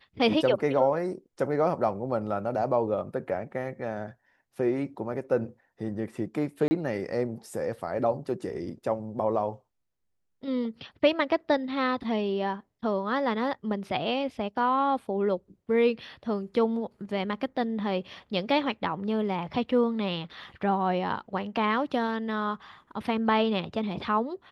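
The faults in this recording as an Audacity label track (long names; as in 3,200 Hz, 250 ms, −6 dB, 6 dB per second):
6.680000	6.710000	drop-out 30 ms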